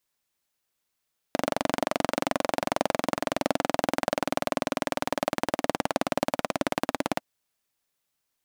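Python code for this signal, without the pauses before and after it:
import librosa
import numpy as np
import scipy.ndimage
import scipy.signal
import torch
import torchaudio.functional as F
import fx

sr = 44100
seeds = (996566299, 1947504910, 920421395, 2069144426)

y = fx.engine_single_rev(sr, seeds[0], length_s=5.86, rpm=2800, resonances_hz=(280.0, 590.0), end_rpm=2100)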